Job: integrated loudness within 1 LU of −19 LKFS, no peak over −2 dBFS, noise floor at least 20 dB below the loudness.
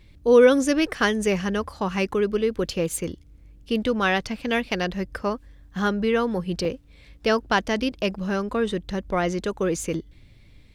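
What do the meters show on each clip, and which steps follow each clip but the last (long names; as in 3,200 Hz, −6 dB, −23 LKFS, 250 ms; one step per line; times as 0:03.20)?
number of dropouts 1; longest dropout 2.0 ms; integrated loudness −24.0 LKFS; sample peak −5.5 dBFS; target loudness −19.0 LKFS
→ repair the gap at 0:06.65, 2 ms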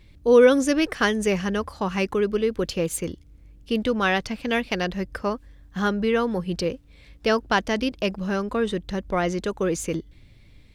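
number of dropouts 0; integrated loudness −24.0 LKFS; sample peak −5.5 dBFS; target loudness −19.0 LKFS
→ level +5 dB
brickwall limiter −2 dBFS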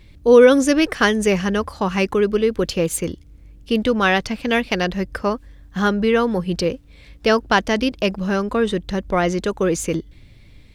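integrated loudness −19.0 LKFS; sample peak −2.0 dBFS; background noise floor −46 dBFS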